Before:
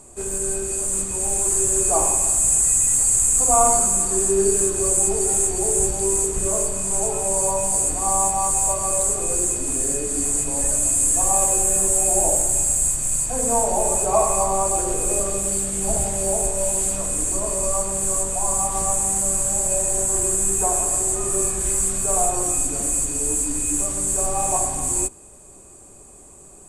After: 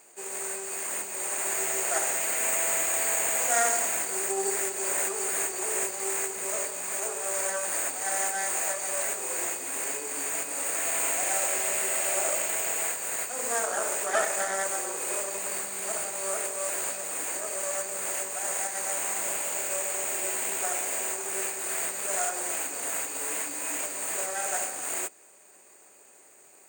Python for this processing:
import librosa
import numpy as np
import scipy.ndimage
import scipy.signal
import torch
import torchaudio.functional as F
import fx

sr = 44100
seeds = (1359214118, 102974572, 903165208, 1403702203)

y = fx.lower_of_two(x, sr, delay_ms=0.46)
y = scipy.signal.sosfilt(scipy.signal.butter(2, 610.0, 'highpass', fs=sr, output='sos'), y)
y = fx.peak_eq(y, sr, hz=12000.0, db=-9.5, octaves=0.85)
y = y * librosa.db_to_amplitude(-2.5)